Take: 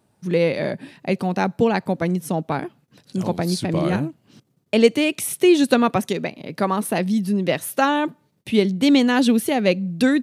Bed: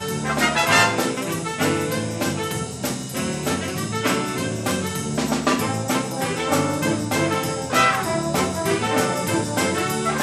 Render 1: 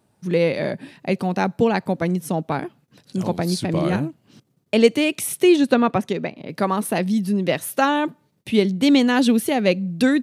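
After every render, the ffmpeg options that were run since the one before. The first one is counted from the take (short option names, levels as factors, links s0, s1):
-filter_complex "[0:a]asettb=1/sr,asplit=3[s0][s1][s2];[s0]atrim=end=5.564[s3];[s1]atrim=start=5.56:end=6.49,asetpts=PTS-STARTPTS,afade=t=in:d=0.004:c=qsin,afade=t=out:st=0.926:d=0.004:c=qsin,lowpass=f=2800:p=1[s4];[s2]atrim=start=6.486[s5];[s3][s4]acrossfade=d=0.004:c1=hsin:c2=qsin[s6];[s6][s5]acrossfade=d=0.004:c1=qsin:c2=hsin"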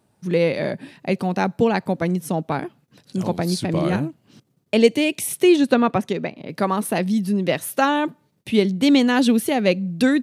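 -filter_complex "[0:a]asettb=1/sr,asplit=3[s0][s1][s2];[s0]atrim=end=4.784[s3];[s1]atrim=start=4.78:end=5.31,asetpts=PTS-STARTPTS,afade=t=in:d=0.004:c=qsin,afade=t=out:st=0.526:d=0.004:c=qsin,equalizer=f=1300:t=o:w=0.36:g=-11[s4];[s2]atrim=start=5.306[s5];[s3][s4]acrossfade=d=0.004:c1=hsin:c2=qsin[s6];[s6][s5]acrossfade=d=0.004:c1=qsin:c2=hsin"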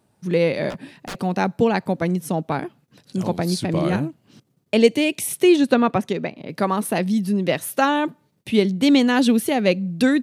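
-filter_complex "[0:a]asettb=1/sr,asplit=3[s0][s1][s2];[s0]atrim=end=0.704[s3];[s1]atrim=start=0.7:end=1.19,asetpts=PTS-STARTPTS,afade=t=in:d=0.004:c=qsin,afade=t=out:st=0.486:d=0.004:c=qsin,aeval=exprs='0.0501*(abs(mod(val(0)/0.0501+3,4)-2)-1)':c=same[s4];[s2]atrim=start=1.186[s5];[s3][s4]acrossfade=d=0.004:c1=hsin:c2=qsin[s6];[s6][s5]acrossfade=d=0.004:c1=qsin:c2=hsin"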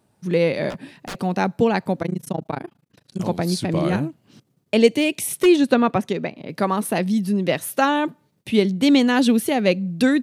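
-filter_complex "[0:a]asettb=1/sr,asplit=3[s0][s1][s2];[s0]atrim=end=2.024[s3];[s1]atrim=start=2.02:end=3.2,asetpts=PTS-STARTPTS,afade=t=in:d=0.004:c=qsin,afade=t=out:st=1.176:d=0.004:c=qsin,tremolo=f=27:d=1[s4];[s2]atrim=start=3.196[s5];[s3][s4]acrossfade=d=0.004:c1=hsin:c2=qsin[s6];[s6][s5]acrossfade=d=0.004:c1=qsin:c2=hsin,asettb=1/sr,asplit=3[s7][s8][s9];[s7]atrim=end=4.874[s10];[s8]atrim=start=4.87:end=5.46,asetpts=PTS-STARTPTS,afade=t=in:d=0.004:c=qsin,afade=t=out:st=0.586:d=0.004:c=qsin,aeval=exprs='0.299*(abs(mod(val(0)/0.299+3,4)-2)-1)':c=same[s11];[s9]atrim=start=5.456[s12];[s10][s11]acrossfade=d=0.004:c1=hsin:c2=qsin[s13];[s13][s12]acrossfade=d=0.004:c1=qsin:c2=hsin"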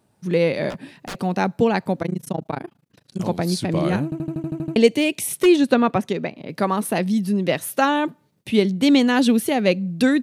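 -filter_complex "[0:a]asplit=10[s0][s1][s2][s3][s4][s5][s6][s7][s8][s9];[s0]atrim=end=4.122[s10];[s1]atrim=start=4.038:end=4.122[s11];[s2]atrim=start=4.038:end=4.122[s12];[s3]atrim=start=4.038:end=4.122[s13];[s4]atrim=start=4.038:end=4.122[s14];[s5]atrim=start=4.038:end=4.122[s15];[s6]atrim=start=4.038:end=4.122[s16];[s7]atrim=start=4.038:end=4.122[s17];[s8]atrim=start=4.038:end=4.122[s18];[s9]atrim=start=4.758[s19];[s10][s11]acrossfade=d=0.004:c1=hsin:c2=hsin[s20];[s20][s12]acrossfade=d=0.004:c1=hsin:c2=hsin[s21];[s21][s13]acrossfade=d=0.004:c1=hsin:c2=hsin[s22];[s22][s14]acrossfade=d=0.004:c1=hsin:c2=hsin[s23];[s23][s15]acrossfade=d=0.004:c1=hsin:c2=hsin[s24];[s24][s16]acrossfade=d=0.004:c1=hsin:c2=hsin[s25];[s25][s17]acrossfade=d=0.004:c1=hsin:c2=hsin[s26];[s26][s18]acrossfade=d=0.004:c1=hsin:c2=hsin[s27];[s27][s19]acrossfade=d=0.004:c1=hsin:c2=hsin"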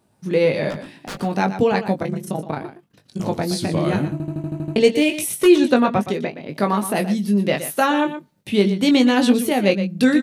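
-filter_complex "[0:a]asplit=2[s0][s1];[s1]adelay=20,volume=0.501[s2];[s0][s2]amix=inputs=2:normalize=0,asplit=2[s3][s4];[s4]aecho=0:1:120:0.266[s5];[s3][s5]amix=inputs=2:normalize=0"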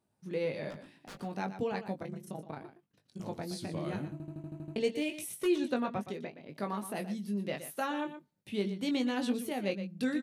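-af "volume=0.15"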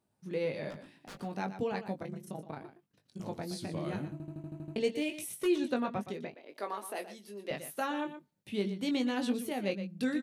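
-filter_complex "[0:a]asettb=1/sr,asplit=3[s0][s1][s2];[s0]atrim=end=6.344[s3];[s1]atrim=start=6.34:end=7.51,asetpts=PTS-STARTPTS,afade=t=in:d=0.004:c=qsin,afade=t=out:st=1.166:d=0.004:c=qsin,highpass=f=340:w=0.5412,highpass=f=340:w=1.3066[s4];[s2]atrim=start=7.506[s5];[s3][s4]acrossfade=d=0.004:c1=hsin:c2=qsin[s6];[s6][s5]acrossfade=d=0.004:c1=qsin:c2=hsin"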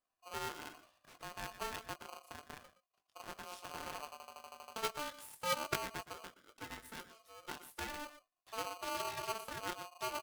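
-af "aeval=exprs='0.126*(cos(1*acos(clip(val(0)/0.126,-1,1)))-cos(1*PI/2))+0.0501*(cos(3*acos(clip(val(0)/0.126,-1,1)))-cos(3*PI/2))+0.00891*(cos(4*acos(clip(val(0)/0.126,-1,1)))-cos(4*PI/2))+0.0112*(cos(5*acos(clip(val(0)/0.126,-1,1)))-cos(5*PI/2))+0.0126*(cos(6*acos(clip(val(0)/0.126,-1,1)))-cos(6*PI/2))':c=same,aeval=exprs='val(0)*sgn(sin(2*PI*890*n/s))':c=same"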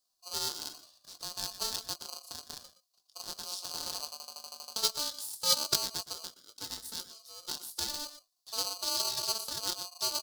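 -af "highshelf=f=3200:t=q:w=3:g=12"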